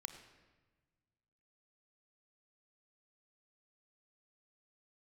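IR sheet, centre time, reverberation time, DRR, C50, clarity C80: 21 ms, 1.3 s, 6.5 dB, 8.0 dB, 9.0 dB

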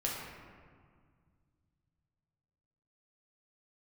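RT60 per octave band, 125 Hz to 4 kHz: 3.7, 2.7, 1.9, 1.9, 1.5, 1.0 seconds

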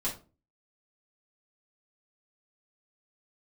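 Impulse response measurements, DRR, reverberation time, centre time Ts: −7.0 dB, 0.35 s, 22 ms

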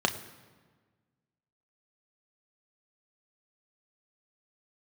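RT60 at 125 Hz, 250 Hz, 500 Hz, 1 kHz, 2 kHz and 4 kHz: 1.8, 1.8, 1.5, 1.4, 1.3, 1.0 seconds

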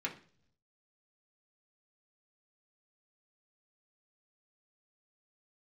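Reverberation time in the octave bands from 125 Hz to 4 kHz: 1.1, 0.80, 0.60, 0.40, 0.45, 0.50 seconds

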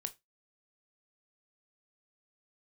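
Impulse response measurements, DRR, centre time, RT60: 8.5 dB, 4 ms, 0.20 s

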